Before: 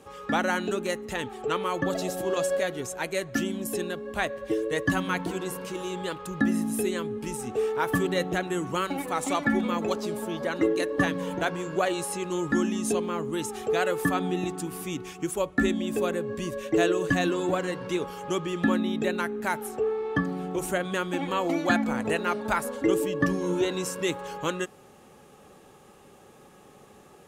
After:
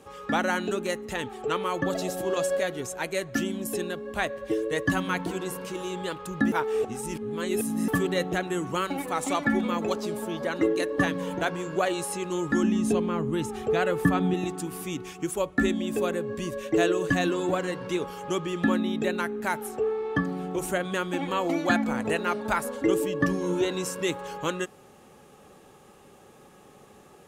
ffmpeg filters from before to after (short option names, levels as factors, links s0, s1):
-filter_complex "[0:a]asettb=1/sr,asplit=3[s0][s1][s2];[s0]atrim=end=12.634[s3];[s1]atrim=start=12.63:end=14.34,asetpts=PTS-STARTPTS,afade=t=in:d=0.004:c=qsin,afade=t=out:st=1.706:d=0.004:c=qsin,bass=f=250:g=8,treble=f=4000:g=-6[s4];[s2]atrim=start=14.336[s5];[s3][s4]acrossfade=d=0.004:c1=hsin:c2=qsin[s6];[s6][s5]acrossfade=d=0.004:c1=qsin:c2=hsin,asplit=3[s7][s8][s9];[s7]atrim=end=6.522[s10];[s8]atrim=start=6.518:end=7.882,asetpts=PTS-STARTPTS,areverse[s11];[s9]atrim=start=7.878[s12];[s10][s11]acrossfade=d=0.004:c1=hsin:c2=hsin[s13];[s13][s12]acrossfade=d=0.004:c1=hsin:c2=hsin"